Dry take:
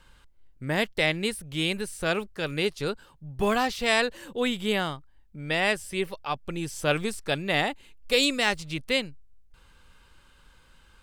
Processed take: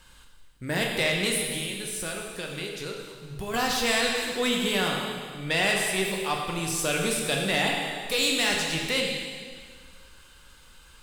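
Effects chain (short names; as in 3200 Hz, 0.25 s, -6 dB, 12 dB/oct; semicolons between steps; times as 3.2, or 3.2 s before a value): 1.39–3.54 compressor 6:1, threshold -35 dBFS, peak gain reduction 14.5 dB; limiter -15.5 dBFS, peak gain reduction 7 dB; high shelf 3400 Hz +10 dB; plate-style reverb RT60 1.9 s, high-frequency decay 0.95×, DRR 0 dB; soft clip -16.5 dBFS, distortion -16 dB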